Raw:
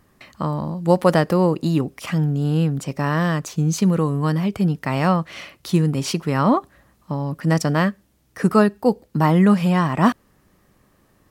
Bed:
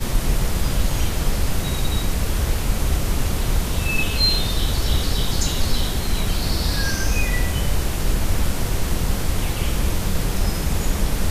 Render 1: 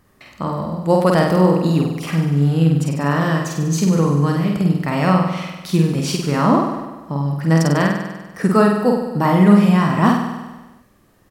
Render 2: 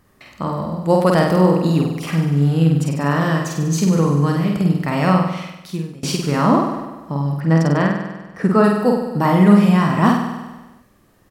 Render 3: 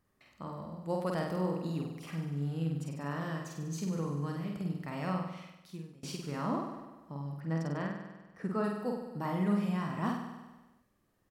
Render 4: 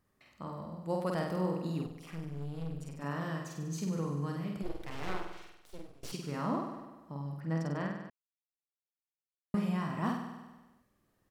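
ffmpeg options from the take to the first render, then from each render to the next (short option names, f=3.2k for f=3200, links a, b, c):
-filter_complex "[0:a]asplit=2[a][b];[b]adelay=49,volume=-2.5dB[c];[a][c]amix=inputs=2:normalize=0,aecho=1:1:98|196|294|392|490|588|686:0.398|0.231|0.134|0.0777|0.0451|0.0261|0.0152"
-filter_complex "[0:a]asettb=1/sr,asplit=3[a][b][c];[a]atrim=end=7.404[d];[b]atrim=start=7.4:end=8.64,asetpts=PTS-STARTPTS,afade=t=in:d=0.004:c=qsin,afade=t=out:st=1.236:d=0.004:c=qsin,lowpass=f=2.4k:p=1[e];[c]atrim=start=8.636[f];[d][e]acrossfade=d=0.004:c1=hsin:c2=qsin[g];[g][f]acrossfade=d=0.004:c1=qsin:c2=hsin,asplit=2[h][i];[h]atrim=end=6.03,asetpts=PTS-STARTPTS,afade=t=out:st=5.18:d=0.85:silence=0.0668344[j];[i]atrim=start=6.03,asetpts=PTS-STARTPTS,afade=t=in:d=0.004:c=hsin:silence=0.0668344[k];[j][k]concat=n=2:v=0:a=1"
-af "volume=-19dB"
-filter_complex "[0:a]asettb=1/sr,asplit=3[a][b][c];[a]atrim=end=1.864[d];[b]atrim=start=1.86:end=3.02,asetpts=PTS-STARTPTS,afade=t=in:d=0.004:c=qsin,afade=t=out:st=1.156:d=0.004:c=qsin,aeval=exprs='(tanh(56.2*val(0)+0.75)-tanh(0.75))/56.2':c=same[e];[c]atrim=start=3.016[f];[d][e]acrossfade=d=0.004:c1=hsin:c2=qsin[g];[g][f]acrossfade=d=0.004:c1=qsin:c2=hsin,asplit=3[h][i][j];[h]afade=t=out:st=4.62:d=0.02[k];[i]aeval=exprs='abs(val(0))':c=same,afade=t=in:st=4.62:d=0.02,afade=t=out:st=6.11:d=0.02[l];[j]afade=t=in:st=6.11:d=0.02[m];[k][l][m]amix=inputs=3:normalize=0,asplit=3[n][o][p];[n]atrim=end=8.1,asetpts=PTS-STARTPTS,afade=t=out:st=8.096:d=0.004:c=hsin[q];[o]atrim=start=8.1:end=9.54,asetpts=PTS-STARTPTS,volume=0[r];[p]atrim=start=9.54,asetpts=PTS-STARTPTS,afade=t=in:d=0.004:c=hsin[s];[q][r][s]concat=n=3:v=0:a=1"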